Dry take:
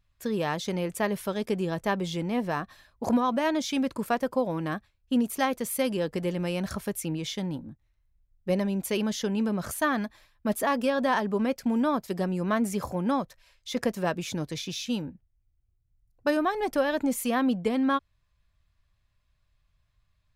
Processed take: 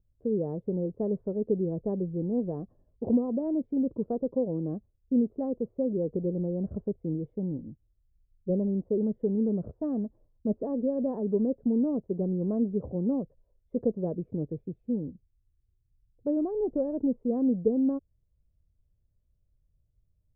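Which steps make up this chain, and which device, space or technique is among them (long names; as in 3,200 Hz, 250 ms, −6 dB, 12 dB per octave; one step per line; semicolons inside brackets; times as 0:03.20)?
under water (low-pass filter 500 Hz 24 dB per octave; parametric band 450 Hz +5 dB 0.31 octaves)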